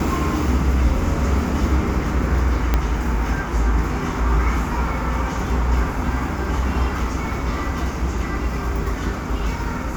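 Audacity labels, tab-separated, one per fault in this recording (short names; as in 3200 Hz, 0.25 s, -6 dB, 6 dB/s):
2.740000	2.740000	pop -5 dBFS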